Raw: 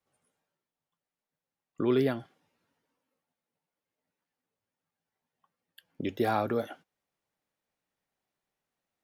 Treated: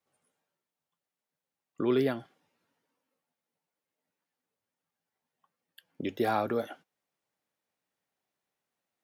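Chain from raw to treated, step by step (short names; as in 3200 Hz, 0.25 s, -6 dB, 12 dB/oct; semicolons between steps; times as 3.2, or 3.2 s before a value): HPF 140 Hz 6 dB/oct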